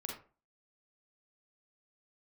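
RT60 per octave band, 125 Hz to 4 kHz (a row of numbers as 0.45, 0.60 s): 0.40, 0.40, 0.40, 0.35, 0.30, 0.20 s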